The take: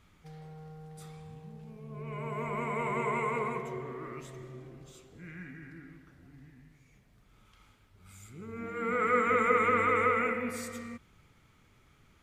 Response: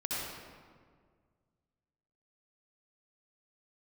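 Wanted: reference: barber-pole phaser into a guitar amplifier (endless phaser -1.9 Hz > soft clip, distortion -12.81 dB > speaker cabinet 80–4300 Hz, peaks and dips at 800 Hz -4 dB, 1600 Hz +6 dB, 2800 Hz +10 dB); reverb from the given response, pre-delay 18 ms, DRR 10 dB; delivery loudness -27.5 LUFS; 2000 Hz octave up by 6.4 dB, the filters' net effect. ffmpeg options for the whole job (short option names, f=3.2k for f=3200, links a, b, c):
-filter_complex "[0:a]equalizer=f=2k:t=o:g=3.5,asplit=2[a][b];[1:a]atrim=start_sample=2205,adelay=18[c];[b][c]afir=irnorm=-1:irlink=0,volume=-15dB[d];[a][d]amix=inputs=2:normalize=0,asplit=2[e][f];[f]afreqshift=-1.9[g];[e][g]amix=inputs=2:normalize=1,asoftclip=threshold=-25.5dB,highpass=80,equalizer=f=800:t=q:w=4:g=-4,equalizer=f=1.6k:t=q:w=4:g=6,equalizer=f=2.8k:t=q:w=4:g=10,lowpass=f=4.3k:w=0.5412,lowpass=f=4.3k:w=1.3066,volume=5dB"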